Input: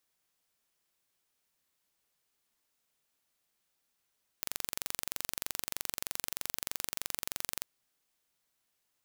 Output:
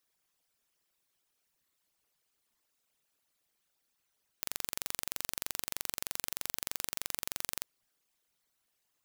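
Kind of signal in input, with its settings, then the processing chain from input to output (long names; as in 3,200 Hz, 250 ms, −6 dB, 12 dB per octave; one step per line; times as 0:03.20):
impulse train 23.2 per second, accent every 0, −7 dBFS 3.19 s
spectral envelope exaggerated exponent 2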